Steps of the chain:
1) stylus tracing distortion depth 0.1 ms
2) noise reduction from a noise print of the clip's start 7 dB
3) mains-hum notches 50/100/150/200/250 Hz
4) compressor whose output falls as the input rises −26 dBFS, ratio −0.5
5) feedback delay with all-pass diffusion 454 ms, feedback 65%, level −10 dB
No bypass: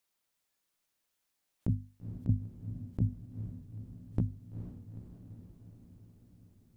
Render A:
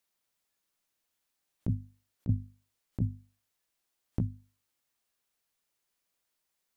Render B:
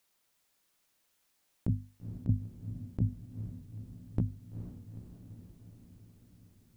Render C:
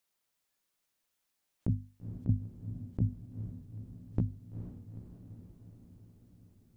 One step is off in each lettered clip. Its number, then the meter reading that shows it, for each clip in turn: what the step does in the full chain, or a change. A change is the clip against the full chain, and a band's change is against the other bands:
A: 5, echo-to-direct ratio −7.5 dB to none audible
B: 2, change in momentary loudness spread +1 LU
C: 1, change in momentary loudness spread +1 LU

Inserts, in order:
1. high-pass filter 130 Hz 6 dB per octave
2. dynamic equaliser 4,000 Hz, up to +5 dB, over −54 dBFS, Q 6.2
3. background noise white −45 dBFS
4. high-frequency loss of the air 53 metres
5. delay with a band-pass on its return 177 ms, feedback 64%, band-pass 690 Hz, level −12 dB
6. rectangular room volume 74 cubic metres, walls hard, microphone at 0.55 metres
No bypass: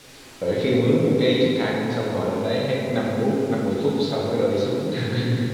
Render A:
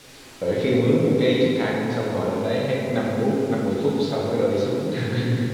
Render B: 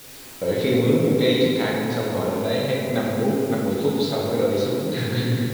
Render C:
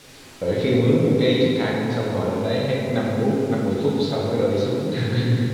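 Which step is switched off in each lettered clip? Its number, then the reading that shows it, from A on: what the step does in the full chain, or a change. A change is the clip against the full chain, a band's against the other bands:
2, 4 kHz band −2.5 dB
4, 8 kHz band +5.0 dB
1, 125 Hz band +3.0 dB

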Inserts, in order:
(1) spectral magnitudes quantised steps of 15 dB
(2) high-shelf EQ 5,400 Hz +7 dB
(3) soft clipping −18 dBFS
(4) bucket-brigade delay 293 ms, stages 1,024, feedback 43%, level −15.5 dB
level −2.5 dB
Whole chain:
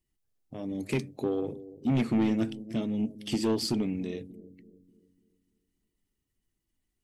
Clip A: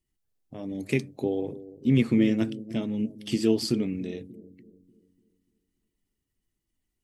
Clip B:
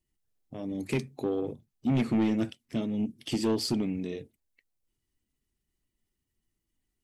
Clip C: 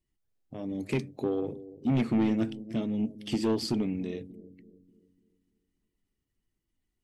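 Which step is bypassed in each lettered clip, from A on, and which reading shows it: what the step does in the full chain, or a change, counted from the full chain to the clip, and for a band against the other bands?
3, distortion level −11 dB
4, echo-to-direct ratio −25.0 dB to none audible
2, 8 kHz band −4.5 dB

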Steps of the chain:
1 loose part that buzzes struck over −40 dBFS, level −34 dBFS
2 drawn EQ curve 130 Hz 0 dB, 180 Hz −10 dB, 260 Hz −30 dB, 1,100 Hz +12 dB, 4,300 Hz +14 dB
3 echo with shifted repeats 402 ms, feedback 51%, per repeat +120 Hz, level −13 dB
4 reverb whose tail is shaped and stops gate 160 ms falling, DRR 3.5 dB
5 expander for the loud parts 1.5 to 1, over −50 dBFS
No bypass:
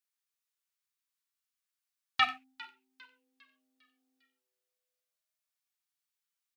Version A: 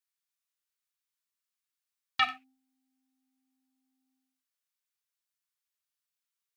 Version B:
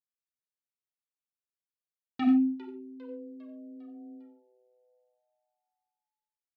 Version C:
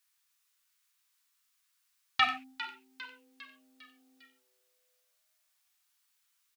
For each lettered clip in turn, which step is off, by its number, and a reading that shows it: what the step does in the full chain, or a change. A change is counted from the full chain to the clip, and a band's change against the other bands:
3, change in momentary loudness spread −6 LU
2, change in momentary loudness spread +2 LU
5, 250 Hz band +5.5 dB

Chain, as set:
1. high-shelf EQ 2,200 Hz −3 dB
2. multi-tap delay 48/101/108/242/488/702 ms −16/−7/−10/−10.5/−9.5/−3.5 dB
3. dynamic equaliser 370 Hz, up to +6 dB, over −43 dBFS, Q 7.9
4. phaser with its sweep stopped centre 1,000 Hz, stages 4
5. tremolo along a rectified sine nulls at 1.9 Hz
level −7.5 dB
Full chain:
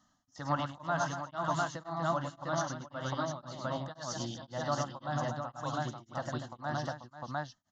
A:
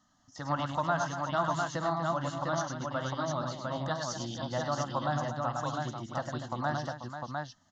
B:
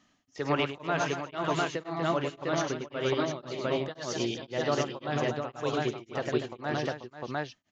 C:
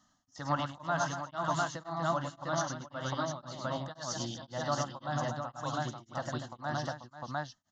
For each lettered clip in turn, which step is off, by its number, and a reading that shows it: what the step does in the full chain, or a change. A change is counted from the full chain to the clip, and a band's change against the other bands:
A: 5, change in integrated loudness +3.0 LU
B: 4, 1 kHz band −5.5 dB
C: 1, 4 kHz band +2.0 dB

